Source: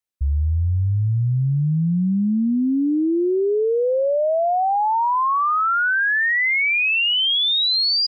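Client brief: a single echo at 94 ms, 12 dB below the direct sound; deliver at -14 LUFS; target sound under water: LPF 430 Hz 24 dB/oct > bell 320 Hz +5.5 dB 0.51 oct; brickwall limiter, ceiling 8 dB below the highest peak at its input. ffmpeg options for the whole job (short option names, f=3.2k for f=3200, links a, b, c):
-af "alimiter=limit=-24dB:level=0:latency=1,lowpass=f=430:w=0.5412,lowpass=f=430:w=1.3066,equalizer=f=320:t=o:w=0.51:g=5.5,aecho=1:1:94:0.251,volume=13dB"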